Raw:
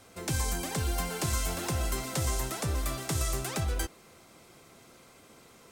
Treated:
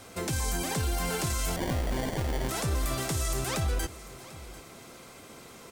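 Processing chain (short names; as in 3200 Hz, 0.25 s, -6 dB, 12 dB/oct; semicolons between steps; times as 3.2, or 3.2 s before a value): limiter -28 dBFS, peak gain reduction 10.5 dB; 1.56–2.49 sample-rate reducer 1300 Hz, jitter 0%; echo 0.744 s -18 dB; gain +7 dB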